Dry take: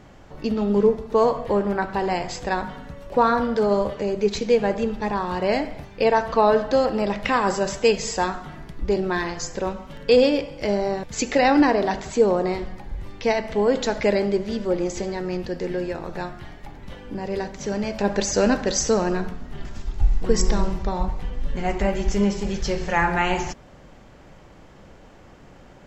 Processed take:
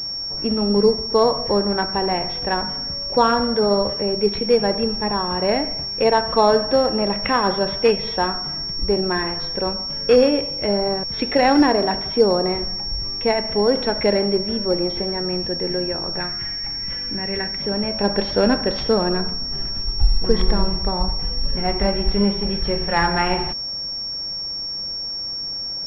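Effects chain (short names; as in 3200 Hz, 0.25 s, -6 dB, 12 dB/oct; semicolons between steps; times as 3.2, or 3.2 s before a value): 16.2–17.62 graphic EQ 500/1000/2000 Hz -5/-4/+11 dB; pulse-width modulation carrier 5500 Hz; gain +2 dB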